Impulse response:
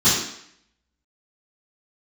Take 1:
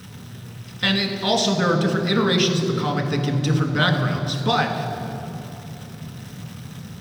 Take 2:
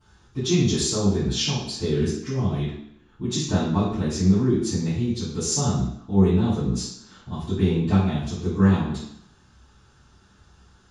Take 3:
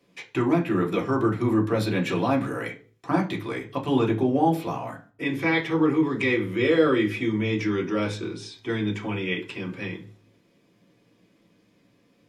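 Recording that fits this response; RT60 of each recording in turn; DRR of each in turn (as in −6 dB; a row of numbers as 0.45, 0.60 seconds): 2; 3.0, 0.70, 0.40 seconds; 2.0, −16.5, −2.0 decibels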